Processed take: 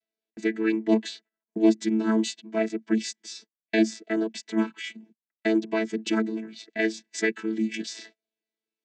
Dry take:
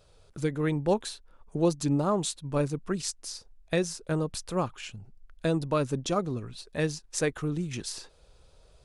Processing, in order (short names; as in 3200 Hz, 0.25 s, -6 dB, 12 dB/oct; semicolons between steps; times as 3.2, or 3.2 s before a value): chord vocoder bare fifth, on A3; gate -59 dBFS, range -30 dB; resonant high shelf 1500 Hz +8 dB, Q 3; gain +4.5 dB